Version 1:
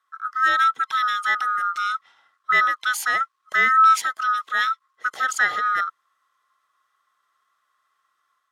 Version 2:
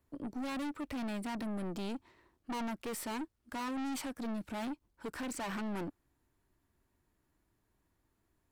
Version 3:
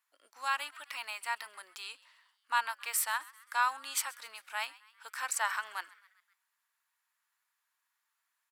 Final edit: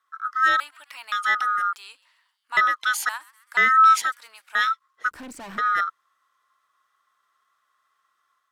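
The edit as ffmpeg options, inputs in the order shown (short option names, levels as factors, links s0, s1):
-filter_complex "[2:a]asplit=4[s0][s1][s2][s3];[0:a]asplit=6[s4][s5][s6][s7][s8][s9];[s4]atrim=end=0.602[s10];[s0]atrim=start=0.598:end=1.122[s11];[s5]atrim=start=1.118:end=1.732[s12];[s1]atrim=start=1.728:end=2.572[s13];[s6]atrim=start=2.568:end=3.092[s14];[s2]atrim=start=3.088:end=3.572[s15];[s7]atrim=start=3.568:end=4.122[s16];[s3]atrim=start=4.118:end=4.552[s17];[s8]atrim=start=4.548:end=5.112[s18];[1:a]atrim=start=5.108:end=5.582[s19];[s9]atrim=start=5.578[s20];[s10][s11]acrossfade=d=0.004:c1=hsin:c2=hsin[s21];[s21][s12]acrossfade=d=0.004:c1=hsin:c2=hsin[s22];[s22][s13]acrossfade=d=0.004:c1=hsin:c2=hsin[s23];[s23][s14]acrossfade=d=0.004:c1=hsin:c2=hsin[s24];[s24][s15]acrossfade=d=0.004:c1=hsin:c2=hsin[s25];[s25][s16]acrossfade=d=0.004:c1=hsin:c2=hsin[s26];[s26][s17]acrossfade=d=0.004:c1=hsin:c2=hsin[s27];[s27][s18]acrossfade=d=0.004:c1=hsin:c2=hsin[s28];[s28][s19]acrossfade=d=0.004:c1=hsin:c2=hsin[s29];[s29][s20]acrossfade=d=0.004:c1=hsin:c2=hsin"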